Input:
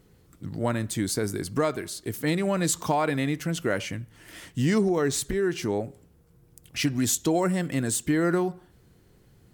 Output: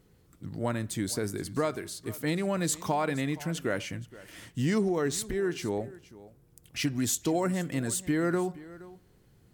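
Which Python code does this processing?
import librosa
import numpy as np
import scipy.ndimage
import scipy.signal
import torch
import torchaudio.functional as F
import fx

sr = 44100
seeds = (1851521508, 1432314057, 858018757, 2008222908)

y = x + 10.0 ** (-19.0 / 20.0) * np.pad(x, (int(471 * sr / 1000.0), 0))[:len(x)]
y = y * 10.0 ** (-4.0 / 20.0)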